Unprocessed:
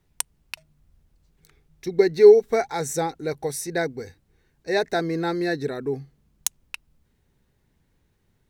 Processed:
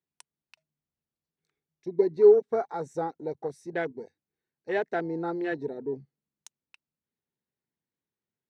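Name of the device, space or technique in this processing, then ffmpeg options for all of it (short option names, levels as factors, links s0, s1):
over-cleaned archive recording: -af "highpass=180,lowpass=6900,afwtdn=0.0316,volume=0.562"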